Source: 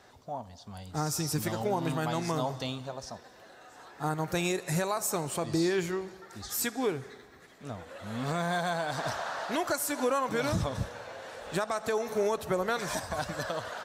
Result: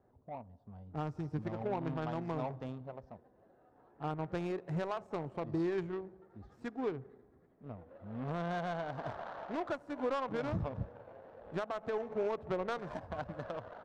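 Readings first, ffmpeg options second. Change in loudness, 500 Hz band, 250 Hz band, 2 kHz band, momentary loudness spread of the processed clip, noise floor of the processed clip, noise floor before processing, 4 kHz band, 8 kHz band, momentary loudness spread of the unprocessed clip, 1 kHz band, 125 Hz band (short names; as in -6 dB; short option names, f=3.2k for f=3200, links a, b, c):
-7.0 dB, -6.0 dB, -6.0 dB, -11.0 dB, 15 LU, -66 dBFS, -54 dBFS, -16.5 dB, under -30 dB, 14 LU, -7.5 dB, -5.5 dB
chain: -af "adynamicsmooth=sensitivity=1.5:basefreq=550,volume=-5.5dB"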